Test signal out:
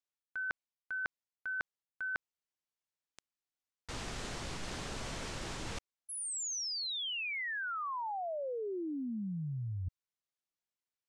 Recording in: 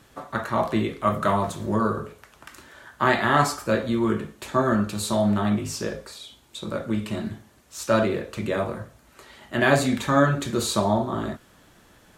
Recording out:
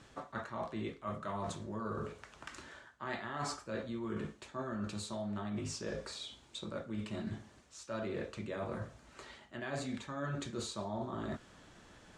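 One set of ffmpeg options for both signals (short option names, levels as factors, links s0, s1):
-af "lowpass=f=8200:w=0.5412,lowpass=f=8200:w=1.3066,areverse,acompressor=threshold=0.0224:ratio=10,areverse,volume=0.668"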